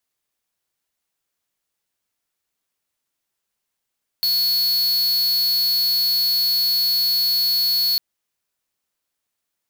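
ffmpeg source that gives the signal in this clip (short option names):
-f lavfi -i "aevalsrc='0.112*(2*lt(mod(4380*t,1),0.5)-1)':d=3.75:s=44100"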